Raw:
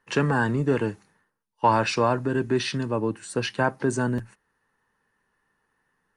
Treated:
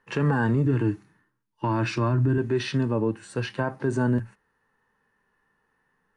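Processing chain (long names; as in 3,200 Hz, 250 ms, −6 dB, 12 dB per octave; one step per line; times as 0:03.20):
high-shelf EQ 4,100 Hz −8.5 dB
harmonic and percussive parts rebalanced percussive −9 dB
0:00.64–0:02.38: thirty-one-band graphic EQ 125 Hz +10 dB, 315 Hz +11 dB, 500 Hz −11 dB, 800 Hz −6 dB
brickwall limiter −20.5 dBFS, peak gain reduction 9.5 dB
level +5 dB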